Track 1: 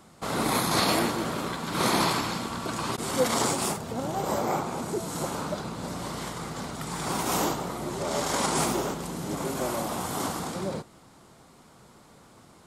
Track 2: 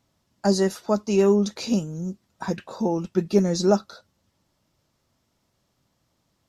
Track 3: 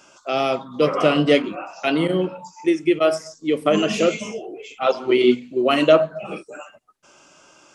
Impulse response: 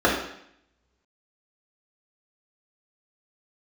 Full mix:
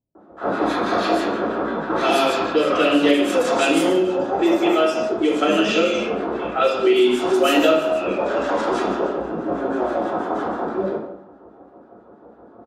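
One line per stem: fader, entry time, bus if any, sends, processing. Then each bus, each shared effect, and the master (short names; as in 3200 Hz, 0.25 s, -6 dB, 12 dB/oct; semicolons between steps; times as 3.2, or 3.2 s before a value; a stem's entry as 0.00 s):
-1.5 dB, 0.15 s, send -3.5 dB, tone controls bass -11 dB, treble +6 dB; harmonic tremolo 6.2 Hz, depth 100%, crossover 1400 Hz
-12.5 dB, 0.00 s, no send, low-pass opened by the level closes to 640 Hz
-7.0 dB, 1.75 s, send -7.5 dB, weighting filter D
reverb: on, RT60 0.70 s, pre-delay 3 ms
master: low-pass opened by the level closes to 810 Hz, open at -5 dBFS; compressor 2:1, threshold -21 dBFS, peak gain reduction 11.5 dB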